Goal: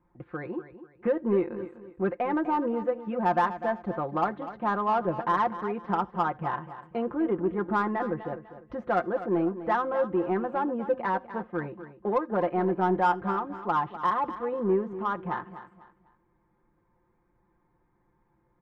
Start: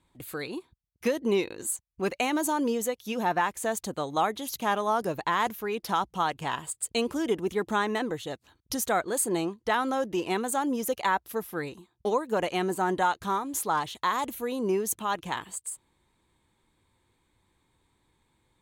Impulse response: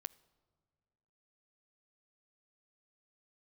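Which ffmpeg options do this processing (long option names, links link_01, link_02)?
-filter_complex "[0:a]lowpass=frequency=1600:width=0.5412,lowpass=frequency=1600:width=1.3066,aecho=1:1:5.7:0.68,asplit=2[link_01][link_02];[link_02]asoftclip=type=tanh:threshold=-23.5dB,volume=-3dB[link_03];[link_01][link_03]amix=inputs=2:normalize=0,aecho=1:1:249|498|747:0.224|0.0694|0.0215[link_04];[1:a]atrim=start_sample=2205,atrim=end_sample=3969[link_05];[link_04][link_05]afir=irnorm=-1:irlink=0"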